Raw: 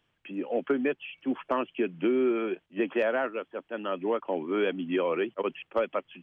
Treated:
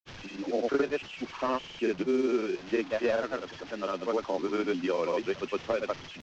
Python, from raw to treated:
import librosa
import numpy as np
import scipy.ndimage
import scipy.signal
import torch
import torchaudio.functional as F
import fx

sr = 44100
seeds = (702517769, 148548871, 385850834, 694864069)

y = fx.delta_mod(x, sr, bps=32000, step_db=-37.5)
y = fx.granulator(y, sr, seeds[0], grain_ms=100.0, per_s=20.0, spray_ms=100.0, spread_st=0)